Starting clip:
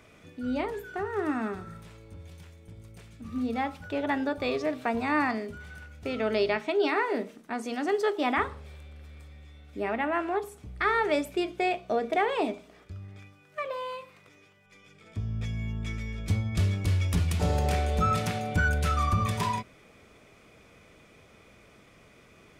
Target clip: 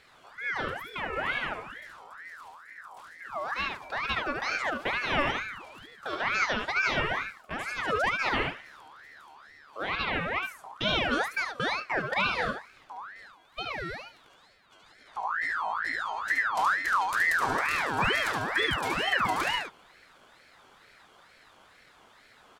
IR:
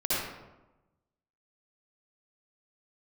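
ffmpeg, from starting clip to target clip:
-af "aecho=1:1:73:0.631,aeval=exprs='val(0)*sin(2*PI*1400*n/s+1400*0.4/2.2*sin(2*PI*2.2*n/s))':c=same"

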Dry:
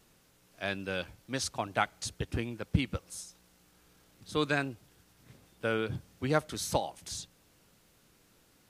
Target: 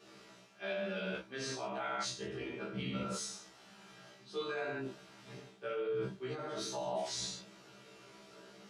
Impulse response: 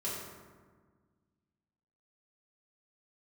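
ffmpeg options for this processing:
-filter_complex "[0:a]highpass=240,lowpass=4800[s0];[1:a]atrim=start_sample=2205,afade=t=out:st=0.25:d=0.01,atrim=end_sample=11466[s1];[s0][s1]afir=irnorm=-1:irlink=0,flanger=delay=2.3:depth=6.6:regen=-67:speed=0.84:shape=triangular,alimiter=level_in=1.78:limit=0.0631:level=0:latency=1:release=41,volume=0.562,areverse,acompressor=threshold=0.00355:ratio=10,areverse,afftfilt=real='re*1.73*eq(mod(b,3),0)':imag='im*1.73*eq(mod(b,3),0)':win_size=2048:overlap=0.75,volume=5.96"

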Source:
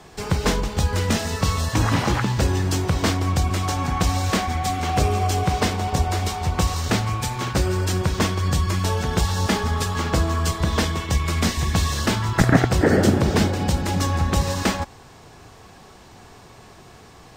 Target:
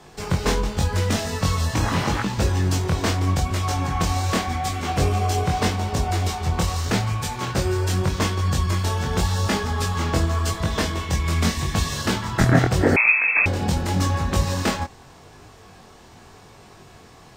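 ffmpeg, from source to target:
-filter_complex "[0:a]flanger=delay=19.5:depth=4.7:speed=0.84,asettb=1/sr,asplit=3[s0][s1][s2];[s0]atrim=end=12.964[s3];[s1]atrim=start=12.96:end=13.46,asetpts=PTS-STARTPTS,afade=t=in:d=0.004:c=qsin,afade=t=out:st=0.496:d=0.004:c=qsin,lowpass=f=2300:t=q:w=0.5098,lowpass=f=2300:t=q:w=0.6013,lowpass=f=2300:t=q:w=0.9,lowpass=f=2300:t=q:w=2.563,afreqshift=-2700[s4];[s2]atrim=start=13.456[s5];[s3][s4]acrossfade=d=0.004:c1=hsin:c2=qsin[s6];[s6][s5]acrossfade=d=0.004:c1=qsin:c2=hsin,volume=1.26"

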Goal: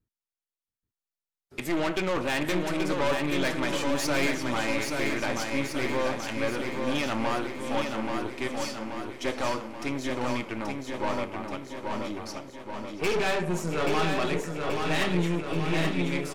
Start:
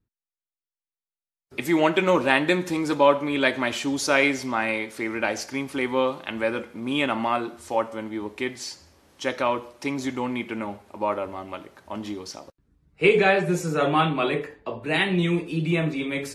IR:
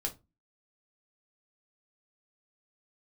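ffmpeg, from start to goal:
-filter_complex "[0:a]asplit=2[s0][s1];[s1]aecho=0:1:683:0.126[s2];[s0][s2]amix=inputs=2:normalize=0,aeval=exprs='(tanh(15.8*val(0)+0.7)-tanh(0.7))/15.8':c=same,asplit=2[s3][s4];[s4]aecho=0:1:830|1660|2490|3320|4150|4980|5810|6640:0.596|0.345|0.2|0.116|0.0674|0.0391|0.0227|0.0132[s5];[s3][s5]amix=inputs=2:normalize=0"

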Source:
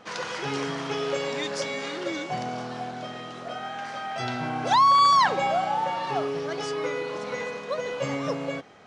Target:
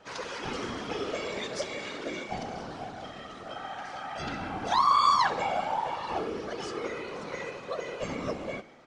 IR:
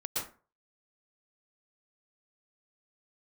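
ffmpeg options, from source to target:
-af "aecho=1:1:68|136|204|272|340:0.15|0.0808|0.0436|0.0236|0.0127,afftfilt=real='hypot(re,im)*cos(2*PI*random(0))':imag='hypot(re,im)*sin(2*PI*random(1))':win_size=512:overlap=0.75,volume=1.12"

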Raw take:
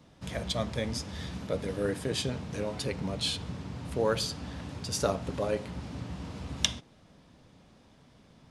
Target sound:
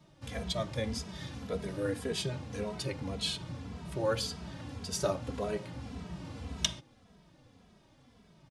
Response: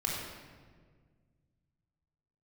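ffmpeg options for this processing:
-filter_complex "[0:a]asplit=2[s0][s1];[s1]adelay=2.7,afreqshift=-1.8[s2];[s0][s2]amix=inputs=2:normalize=1"

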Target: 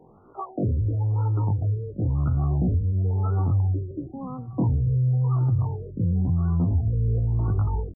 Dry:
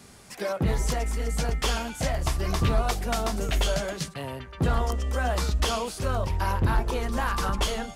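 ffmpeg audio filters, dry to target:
-filter_complex "[0:a]asubboost=boost=3.5:cutoff=130,asplit=2[s0][s1];[s1]alimiter=limit=0.2:level=0:latency=1:release=26,volume=1.12[s2];[s0][s2]amix=inputs=2:normalize=0,acompressor=threshold=0.251:ratio=6,asetrate=85689,aresample=44100,atempo=0.514651,afftfilt=real='re*lt(b*sr/1024,580*pow(1500/580,0.5+0.5*sin(2*PI*0.96*pts/sr)))':imag='im*lt(b*sr/1024,580*pow(1500/580,0.5+0.5*sin(2*PI*0.96*pts/sr)))':win_size=1024:overlap=0.75,volume=0.473"

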